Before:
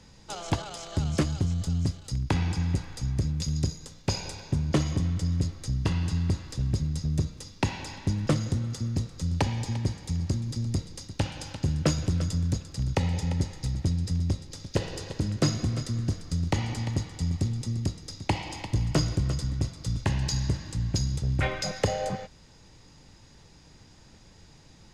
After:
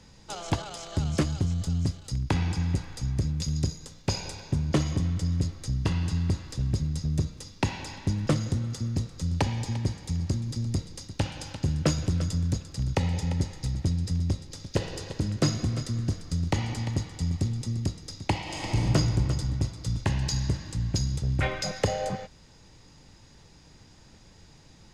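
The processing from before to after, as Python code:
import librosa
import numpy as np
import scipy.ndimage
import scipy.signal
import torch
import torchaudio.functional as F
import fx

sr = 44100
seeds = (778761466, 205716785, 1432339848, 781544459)

y = fx.reverb_throw(x, sr, start_s=18.42, length_s=0.4, rt60_s=2.5, drr_db=-4.5)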